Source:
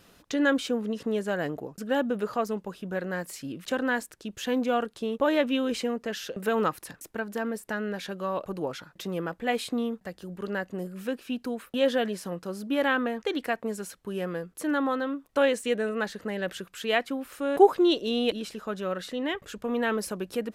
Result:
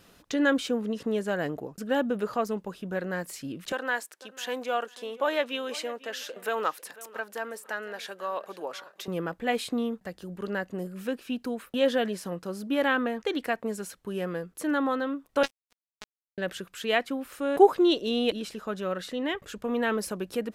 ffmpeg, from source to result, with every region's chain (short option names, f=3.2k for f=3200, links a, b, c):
-filter_complex "[0:a]asettb=1/sr,asplit=3[a][b][c];[a]atrim=end=3.724[d];[b]atrim=start=3.72:end=9.08,asetpts=PTS-STARTPTS,afade=t=in:d=0.004:c=qsin,afade=t=out:st=5.356:d=0.004:c=qsin,highpass=540,aecho=1:1:497|994:0.112|0.0258,atrim=end_sample=236376[e];[c]atrim=start=9.076[f];[d][e]acrossfade=d=0.004:c1=hsin:c2=qsin[g];[g][f]acrossfade=d=0.004:c1=qsin:c2=hsin,asettb=1/sr,asplit=3[h][i][j];[h]atrim=end=15.434[k];[i]atrim=start=15.43:end=16.38,asetpts=PTS-STARTPTS,afade=t=in:d=0.004:c=qsin,afade=t=out:st=0.946:d=0.004:c=qsin,highpass=680,acrusher=bits=2:mix=0:aa=0.5[l];[j]atrim=start=16.376[m];[k][l]acrossfade=d=0.004:c1=hsin:c2=qsin[n];[n][m]acrossfade=d=0.004:c1=qsin:c2=hsin"